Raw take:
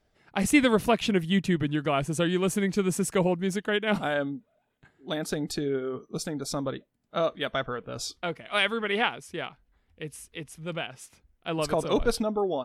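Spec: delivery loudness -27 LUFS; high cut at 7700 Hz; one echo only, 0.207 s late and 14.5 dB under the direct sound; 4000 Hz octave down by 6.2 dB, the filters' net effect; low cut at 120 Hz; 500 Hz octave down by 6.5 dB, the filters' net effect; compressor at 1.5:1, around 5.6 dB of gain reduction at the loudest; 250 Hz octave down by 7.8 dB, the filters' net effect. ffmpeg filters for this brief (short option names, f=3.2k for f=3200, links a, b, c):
-af "highpass=120,lowpass=7.7k,equalizer=f=250:t=o:g=-9,equalizer=f=500:t=o:g=-5.5,equalizer=f=4k:t=o:g=-8.5,acompressor=threshold=-38dB:ratio=1.5,aecho=1:1:207:0.188,volume=10.5dB"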